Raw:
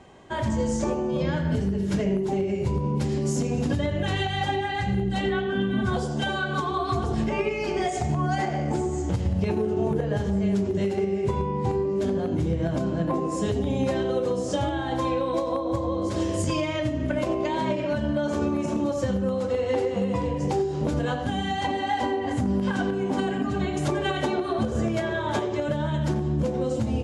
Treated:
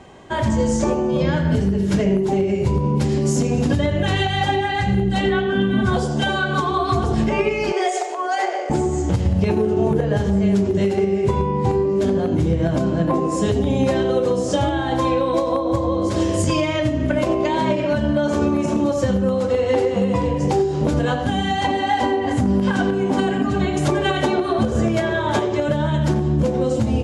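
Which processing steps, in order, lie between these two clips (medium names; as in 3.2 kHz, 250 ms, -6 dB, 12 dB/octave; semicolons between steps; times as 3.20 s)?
7.72–8.70 s: steep high-pass 360 Hz 72 dB/octave; trim +6.5 dB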